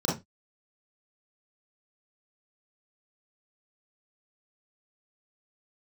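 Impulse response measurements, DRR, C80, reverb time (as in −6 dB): −6.0 dB, 16.5 dB, 0.20 s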